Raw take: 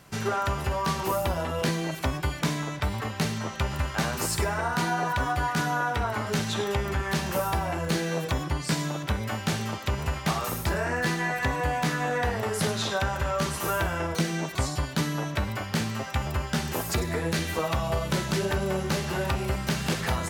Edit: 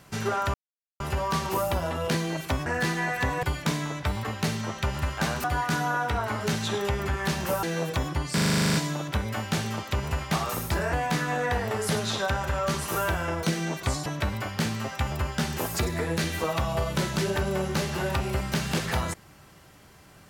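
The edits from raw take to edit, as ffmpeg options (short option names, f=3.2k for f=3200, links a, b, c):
-filter_complex "[0:a]asplit=18[a][b][c][d][e][f][g][h][i][j][k][l][m][n][o][p][q][r];[a]atrim=end=0.54,asetpts=PTS-STARTPTS,afade=t=out:st=0.536:d=0.004:c=hsin,apad=pad_dur=0.46[s];[b]atrim=start=0.54:end=2.202,asetpts=PTS-STARTPTS,afade=t=in:d=0.004:c=hsin[t];[c]atrim=start=10.878:end=11.652[u];[d]atrim=start=2.198:end=4.212[v];[e]atrim=start=5.298:end=7.492[w];[f]atrim=start=7.978:end=8.732[x];[g]atrim=start=8.688:end=8.732[y];[h]atrim=start=8.688:end=8.732[z];[i]atrim=start=8.688:end=8.732[aa];[j]atrim=start=8.688:end=8.732[ab];[k]atrim=start=8.688:end=8.732[ac];[l]atrim=start=8.688:end=8.732[ad];[m]atrim=start=8.688:end=8.732[ae];[n]atrim=start=8.688:end=8.732[af];[o]atrim=start=8.688:end=8.732[ag];[p]atrim=start=8.688:end=10.882[ah];[q]atrim=start=11.648:end=14.782[ai];[r]atrim=start=15.208[aj];[s][t]concat=n=2:v=0:a=1[ak];[ak][u]acrossfade=d=0.004:c1=hsin:c2=hsin[al];[al][v]acrossfade=d=0.004:c1=hsin:c2=hsin[am];[am][w]acrossfade=d=0.004:c1=hsin:c2=hsin[an];[an][x]acrossfade=d=0.004:c1=hsin:c2=hsin[ao];[ao][y]acrossfade=d=0.004:c1=hsin:c2=hsin[ap];[ap][z]acrossfade=d=0.004:c1=hsin:c2=hsin[aq];[aq][aa]acrossfade=d=0.004:c1=hsin:c2=hsin[ar];[ar][ab]acrossfade=d=0.004:c1=hsin:c2=hsin[as];[as][ac]acrossfade=d=0.004:c1=hsin:c2=hsin[at];[at][ad]acrossfade=d=0.004:c1=hsin:c2=hsin[au];[au][ae]acrossfade=d=0.004:c1=hsin:c2=hsin[av];[av][af]acrossfade=d=0.004:c1=hsin:c2=hsin[aw];[aw][ag]acrossfade=d=0.004:c1=hsin:c2=hsin[ax];[ax][ah]acrossfade=d=0.004:c1=hsin:c2=hsin[ay];[ay][ai]acrossfade=d=0.004:c1=hsin:c2=hsin[az];[az][aj]acrossfade=d=0.004:c1=hsin:c2=hsin"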